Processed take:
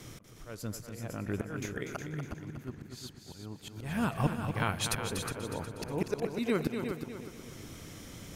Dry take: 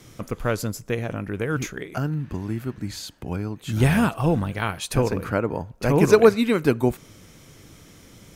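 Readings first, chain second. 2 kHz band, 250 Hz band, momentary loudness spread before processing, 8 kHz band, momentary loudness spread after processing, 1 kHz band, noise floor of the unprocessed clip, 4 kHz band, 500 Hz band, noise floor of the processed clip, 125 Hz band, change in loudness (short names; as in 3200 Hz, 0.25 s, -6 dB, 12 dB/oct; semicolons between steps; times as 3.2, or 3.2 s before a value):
-10.5 dB, -12.0 dB, 14 LU, -5.5 dB, 15 LU, -10.5 dB, -49 dBFS, -6.0 dB, -16.0 dB, -52 dBFS, -12.0 dB, -13.0 dB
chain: auto swell 0.742 s; multi-head echo 0.121 s, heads second and third, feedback 42%, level -8 dB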